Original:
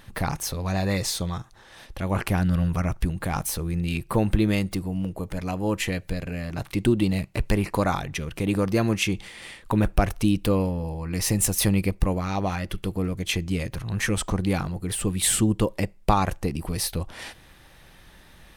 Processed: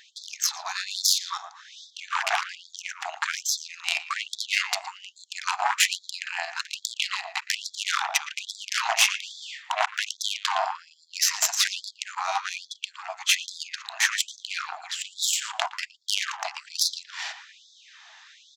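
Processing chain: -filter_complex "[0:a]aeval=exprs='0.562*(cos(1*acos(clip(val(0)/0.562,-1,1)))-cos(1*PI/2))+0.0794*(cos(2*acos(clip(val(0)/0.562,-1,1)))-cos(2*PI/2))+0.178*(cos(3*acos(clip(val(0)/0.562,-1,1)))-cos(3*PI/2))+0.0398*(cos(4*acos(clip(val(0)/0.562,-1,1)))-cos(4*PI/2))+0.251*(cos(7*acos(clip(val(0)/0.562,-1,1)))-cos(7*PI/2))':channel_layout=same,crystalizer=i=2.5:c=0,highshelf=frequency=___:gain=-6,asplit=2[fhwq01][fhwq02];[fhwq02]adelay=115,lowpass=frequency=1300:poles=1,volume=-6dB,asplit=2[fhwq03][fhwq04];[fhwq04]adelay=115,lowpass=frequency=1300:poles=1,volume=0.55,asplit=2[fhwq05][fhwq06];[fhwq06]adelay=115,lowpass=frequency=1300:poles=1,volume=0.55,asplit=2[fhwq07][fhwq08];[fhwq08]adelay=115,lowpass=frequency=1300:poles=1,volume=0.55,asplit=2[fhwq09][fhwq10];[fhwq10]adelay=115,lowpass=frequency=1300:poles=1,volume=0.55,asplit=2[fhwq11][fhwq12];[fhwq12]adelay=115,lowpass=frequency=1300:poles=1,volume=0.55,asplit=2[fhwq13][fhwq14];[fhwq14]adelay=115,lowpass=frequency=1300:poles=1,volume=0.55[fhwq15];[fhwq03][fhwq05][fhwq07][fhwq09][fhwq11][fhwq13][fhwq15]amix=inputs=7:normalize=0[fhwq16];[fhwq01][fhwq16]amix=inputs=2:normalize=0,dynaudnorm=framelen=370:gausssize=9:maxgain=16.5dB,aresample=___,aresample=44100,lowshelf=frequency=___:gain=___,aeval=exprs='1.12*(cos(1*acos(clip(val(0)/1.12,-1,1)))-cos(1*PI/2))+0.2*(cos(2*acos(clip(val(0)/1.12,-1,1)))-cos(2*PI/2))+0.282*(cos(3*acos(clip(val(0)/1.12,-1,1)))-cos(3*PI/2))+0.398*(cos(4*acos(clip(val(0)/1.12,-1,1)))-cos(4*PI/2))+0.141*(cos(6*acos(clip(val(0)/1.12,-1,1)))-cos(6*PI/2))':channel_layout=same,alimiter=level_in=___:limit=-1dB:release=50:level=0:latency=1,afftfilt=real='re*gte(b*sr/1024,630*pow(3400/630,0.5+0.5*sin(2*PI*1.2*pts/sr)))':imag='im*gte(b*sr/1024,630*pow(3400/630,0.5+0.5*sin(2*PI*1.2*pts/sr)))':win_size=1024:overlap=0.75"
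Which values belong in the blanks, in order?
4000, 16000, 280, 4.5, 4.5dB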